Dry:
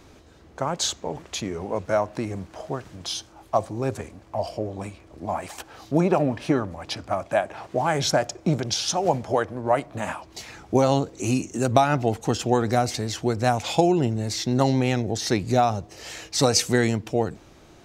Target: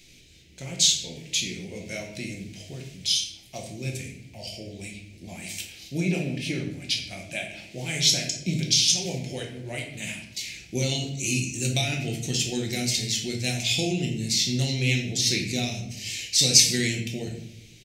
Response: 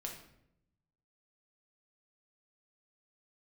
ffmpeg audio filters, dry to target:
-filter_complex "[0:a]firequalizer=gain_entry='entry(190,0);entry(1100,-25);entry(2200,12)':delay=0.05:min_phase=1[s0];[1:a]atrim=start_sample=2205[s1];[s0][s1]afir=irnorm=-1:irlink=0,volume=0.708"

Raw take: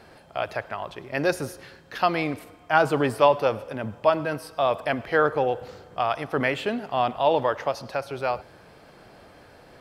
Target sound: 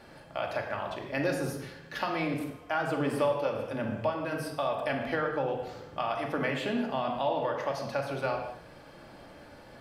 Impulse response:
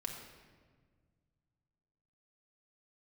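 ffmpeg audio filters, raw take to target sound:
-filter_complex "[0:a]acompressor=threshold=0.0562:ratio=6[s0];[1:a]atrim=start_sample=2205,afade=t=out:st=0.33:d=0.01,atrim=end_sample=14994,asetrate=52920,aresample=44100[s1];[s0][s1]afir=irnorm=-1:irlink=0,volume=1.19"

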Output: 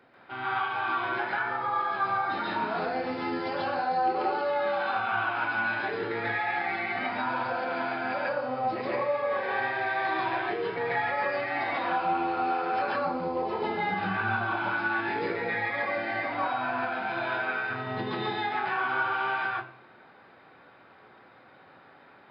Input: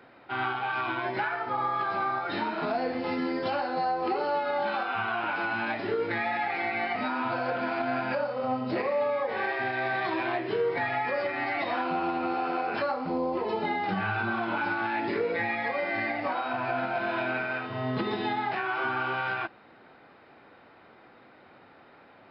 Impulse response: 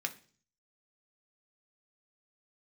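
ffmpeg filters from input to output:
-filter_complex "[0:a]asplit=2[s0][s1];[1:a]atrim=start_sample=2205,asetrate=28665,aresample=44100,adelay=139[s2];[s1][s2]afir=irnorm=-1:irlink=0,volume=1.06[s3];[s0][s3]amix=inputs=2:normalize=0,volume=0.501"

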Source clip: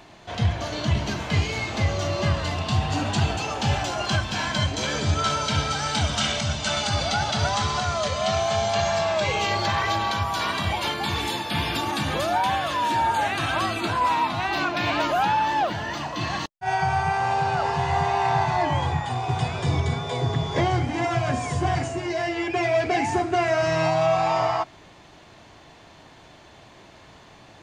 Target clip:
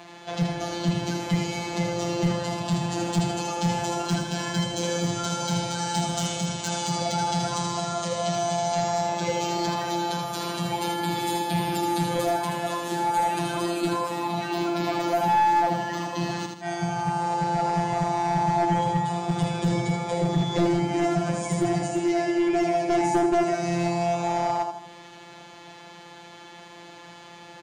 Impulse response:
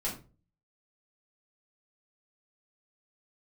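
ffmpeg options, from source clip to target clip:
-filter_complex "[0:a]afftfilt=real='hypot(re,im)*cos(PI*b)':imag='0':win_size=1024:overlap=0.75,acrossover=split=730|6100[s0][s1][s2];[s1]acompressor=threshold=0.00708:ratio=4[s3];[s0][s3][s2]amix=inputs=3:normalize=0,highpass=78,aecho=1:1:79|158|237|316|395:0.562|0.231|0.0945|0.0388|0.0159,aeval=exprs='clip(val(0),-1,0.0562)':c=same,volume=2.11"

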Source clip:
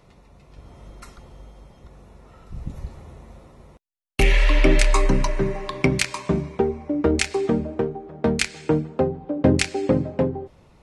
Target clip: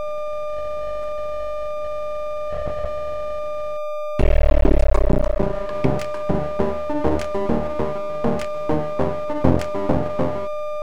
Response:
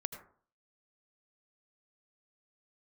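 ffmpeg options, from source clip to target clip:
-af "tiltshelf=f=1200:g=9,aeval=exprs='val(0)+0.178*sin(2*PI*600*n/s)':c=same,aeval=exprs='max(val(0),0)':c=same,volume=0.631"

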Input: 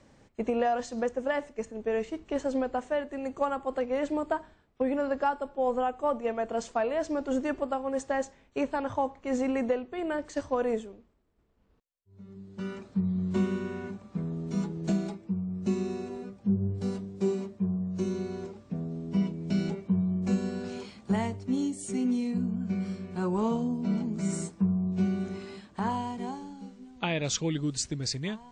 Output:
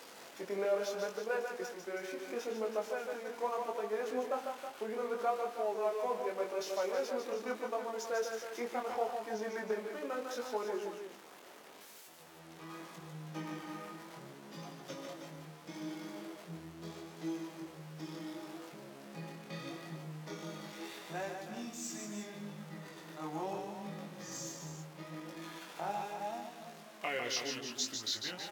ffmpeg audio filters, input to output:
-af "aeval=exprs='val(0)+0.5*0.0119*sgn(val(0))':c=same,highpass=560,asetrate=37084,aresample=44100,atempo=1.18921,aecho=1:1:149|321:0.531|0.335,flanger=delay=18.5:depth=6.8:speed=0.75,volume=0.75"

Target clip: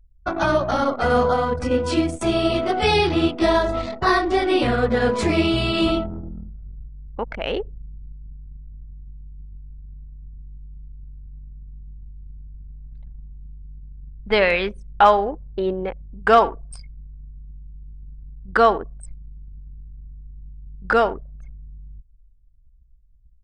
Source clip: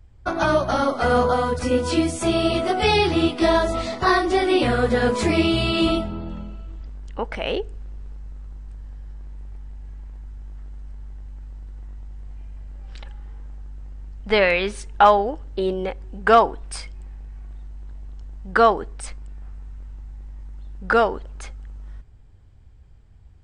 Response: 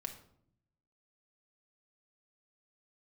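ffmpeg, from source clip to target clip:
-filter_complex "[0:a]asplit=2[s0][s1];[1:a]atrim=start_sample=2205,adelay=85[s2];[s1][s2]afir=irnorm=-1:irlink=0,volume=0.158[s3];[s0][s3]amix=inputs=2:normalize=0,anlmdn=100"

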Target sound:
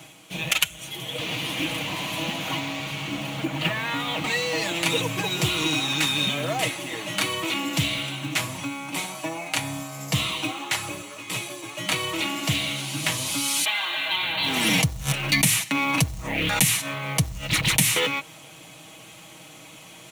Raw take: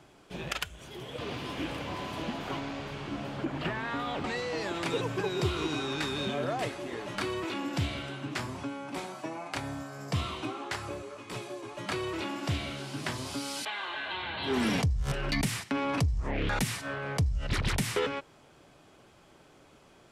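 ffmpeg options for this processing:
-filter_complex "[0:a]aexciter=amount=3.4:drive=3.7:freq=2100,asplit=2[s0][s1];[s1]acrusher=bits=3:mode=log:mix=0:aa=0.000001,volume=0.708[s2];[s0][s2]amix=inputs=2:normalize=0,highpass=85,aecho=1:1:6.3:0.57,areverse,acompressor=mode=upward:threshold=0.0158:ratio=2.5,areverse,equalizer=f=400:t=o:w=0.33:g=-10,equalizer=f=1600:t=o:w=0.33:g=-3,equalizer=f=5000:t=o:w=0.33:g=-10,equalizer=f=8000:t=o:w=0.33:g=-4"

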